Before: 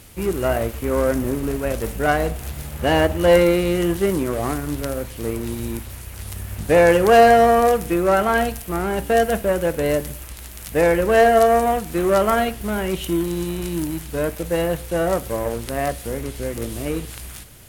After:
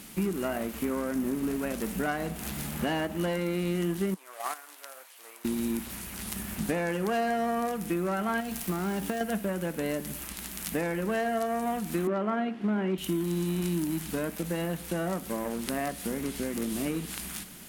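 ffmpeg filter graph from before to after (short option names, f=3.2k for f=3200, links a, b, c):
-filter_complex "[0:a]asettb=1/sr,asplit=3[a][b][c];[a]atrim=end=4.144[d];[b]atrim=start=4.14:end=5.45,asetpts=PTS-STARTPTS,afade=t=in:d=0.004:c=qsin,afade=t=out:st=1.306:d=0.004:c=qsin,highpass=f=640:w=0.5412,highpass=f=640:w=1.3066,agate=range=-12dB:threshold=-28dB:ratio=16:release=100:detection=peak[e];[c]atrim=start=5.446[f];[d][e]acrossfade=d=0.004:c1=hsin:c2=qsin[g];[g][f]acrossfade=d=0.004:c1=qsin:c2=hsin,asettb=1/sr,asplit=3[h][i][j];[h]atrim=end=8.404[k];[i]atrim=start=8.4:end=9.21,asetpts=PTS-STARTPTS,afade=t=in:d=0.004:c=qsin,afade=t=out:st=0.806:d=0.004:c=qsin,acompressor=threshold=-22dB:ratio=6:attack=3.2:release=140:knee=1:detection=peak,acrusher=bits=7:dc=4:mix=0:aa=0.000001[l];[j]atrim=start=9.206[m];[k][l]acrossfade=d=0.004:c1=hsin:c2=qsin[n];[n][m]acrossfade=d=0.004:c1=qsin:c2=hsin,asettb=1/sr,asplit=3[o][p][q];[o]atrim=end=12.074[r];[p]atrim=start=12.07:end=12.98,asetpts=PTS-STARTPTS,afade=t=in:d=0.004:c=qsin,afade=t=out:st=0.906:d=0.004:c=qsin,highpass=210,lowpass=2.7k,equalizer=f=290:w=0.52:g=5.5[s];[q]atrim=start=12.976[t];[r][s]acrossfade=d=0.004:c1=hsin:c2=qsin[u];[u][t]acrossfade=d=0.004:c1=qsin:c2=hsin,lowshelf=f=140:t=q:w=3:g=-10,acompressor=threshold=-26dB:ratio=4,equalizer=f=510:w=2:g=-7"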